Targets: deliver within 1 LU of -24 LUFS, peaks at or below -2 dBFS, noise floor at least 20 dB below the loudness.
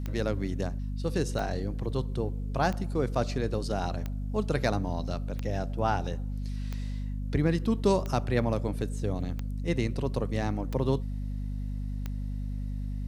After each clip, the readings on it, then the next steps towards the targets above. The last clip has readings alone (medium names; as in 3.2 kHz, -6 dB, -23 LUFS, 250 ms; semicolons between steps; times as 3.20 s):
clicks found 10; hum 50 Hz; highest harmonic 250 Hz; hum level -30 dBFS; loudness -31.0 LUFS; peak level -11.5 dBFS; loudness target -24.0 LUFS
-> de-click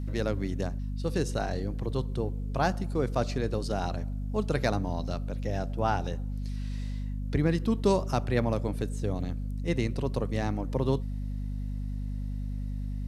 clicks found 0; hum 50 Hz; highest harmonic 250 Hz; hum level -30 dBFS
-> de-hum 50 Hz, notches 5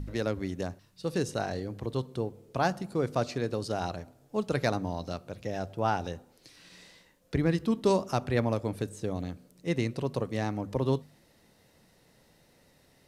hum not found; loudness -32.0 LUFS; peak level -12.5 dBFS; loudness target -24.0 LUFS
-> trim +8 dB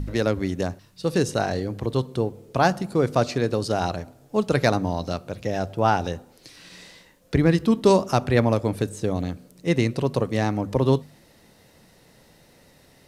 loudness -24.0 LUFS; peak level -4.5 dBFS; noise floor -56 dBFS